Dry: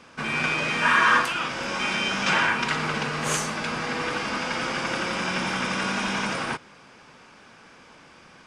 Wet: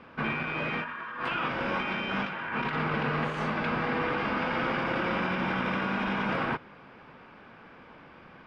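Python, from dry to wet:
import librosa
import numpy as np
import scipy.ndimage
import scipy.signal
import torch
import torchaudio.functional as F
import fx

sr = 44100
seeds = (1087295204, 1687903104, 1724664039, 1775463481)

y = fx.over_compress(x, sr, threshold_db=-28.0, ratio=-1.0)
y = fx.air_absorb(y, sr, metres=420.0)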